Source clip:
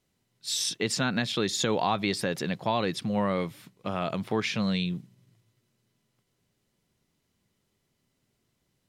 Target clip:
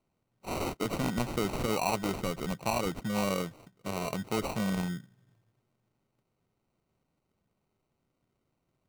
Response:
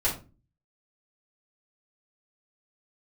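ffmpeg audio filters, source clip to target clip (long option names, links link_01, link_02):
-af "acrusher=samples=26:mix=1:aa=0.000001,volume=-3.5dB"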